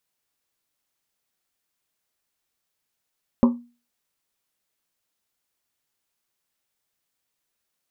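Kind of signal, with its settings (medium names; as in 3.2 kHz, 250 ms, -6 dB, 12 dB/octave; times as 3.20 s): Risset drum, pitch 240 Hz, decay 0.34 s, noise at 1 kHz, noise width 300 Hz, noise 15%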